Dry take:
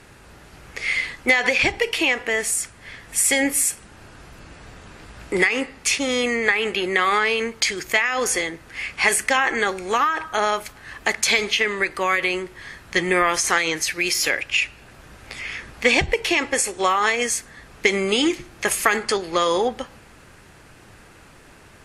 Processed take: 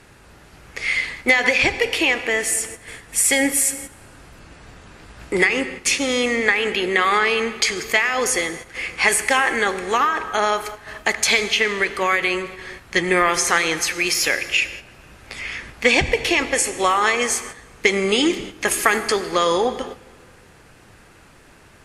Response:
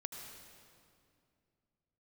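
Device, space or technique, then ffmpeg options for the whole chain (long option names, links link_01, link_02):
keyed gated reverb: -filter_complex "[0:a]asplit=3[link_01][link_02][link_03];[1:a]atrim=start_sample=2205[link_04];[link_02][link_04]afir=irnorm=-1:irlink=0[link_05];[link_03]apad=whole_len=963440[link_06];[link_05][link_06]sidechaingate=range=-12dB:threshold=-39dB:ratio=16:detection=peak,volume=-2.5dB[link_07];[link_01][link_07]amix=inputs=2:normalize=0,volume=-2dB"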